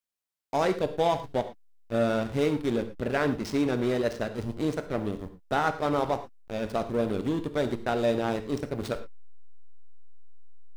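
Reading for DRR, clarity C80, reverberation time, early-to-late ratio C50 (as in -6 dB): 9.0 dB, 15.5 dB, not exponential, 12.0 dB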